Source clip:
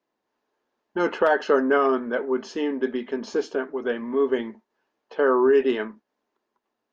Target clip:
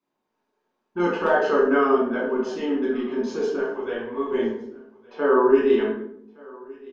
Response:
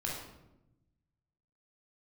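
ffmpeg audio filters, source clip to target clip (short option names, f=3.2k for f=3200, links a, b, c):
-filter_complex "[0:a]asettb=1/sr,asplit=3[a][b][c];[a]atrim=end=3.584[d];[b]atrim=start=3.58:end=4.32,asetpts=PTS-STARTPTS,afade=t=in:d=0.004:c=qsin,afade=t=out:st=0.736:d=0.004:c=qsin,equalizer=f=240:t=o:w=0.84:g=-9.5[e];[c]atrim=start=4.316[f];[d][e]acrossfade=d=0.004:c1=hsin:c2=qsin[g];[g][f]acrossfade=d=0.004:c1=qsin:c2=hsin,aecho=1:1:1166:0.0668[h];[1:a]atrim=start_sample=2205,asetrate=66150,aresample=44100[i];[h][i]afir=irnorm=-1:irlink=0"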